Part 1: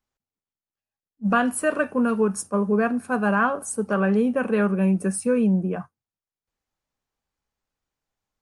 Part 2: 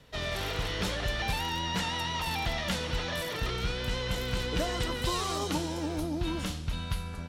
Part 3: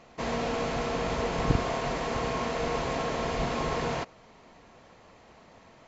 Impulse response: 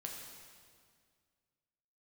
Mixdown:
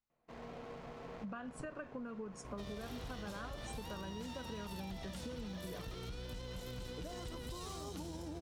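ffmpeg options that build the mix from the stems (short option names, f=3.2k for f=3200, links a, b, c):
-filter_complex "[0:a]lowpass=f=6.7k:w=0.5412,lowpass=f=6.7k:w=1.3066,acompressor=threshold=-27dB:ratio=6,volume=-11dB,asplit=2[a][b];[1:a]equalizer=f=2k:t=o:w=2:g=-8,aeval=exprs='val(0)+0.00891*(sin(2*PI*60*n/s)+sin(2*PI*2*60*n/s)/2+sin(2*PI*3*60*n/s)/3+sin(2*PI*4*60*n/s)/4+sin(2*PI*5*60*n/s)/5)':c=same,adelay=2450,volume=-4dB[c];[2:a]lowpass=f=1.5k:p=1,aeval=exprs='clip(val(0),-1,0.0376)':c=same,adelay=100,volume=-16.5dB,asplit=2[d][e];[e]volume=-6dB[f];[b]apad=whole_len=263288[g];[d][g]sidechaincompress=threshold=-43dB:ratio=8:attack=6.4:release=1500[h];[c][h]amix=inputs=2:normalize=0,aeval=exprs='sgn(val(0))*max(abs(val(0))-0.00211,0)':c=same,alimiter=level_in=8.5dB:limit=-24dB:level=0:latency=1,volume=-8.5dB,volume=0dB[i];[3:a]atrim=start_sample=2205[j];[f][j]afir=irnorm=-1:irlink=0[k];[a][i][k]amix=inputs=3:normalize=0,acompressor=threshold=-41dB:ratio=6"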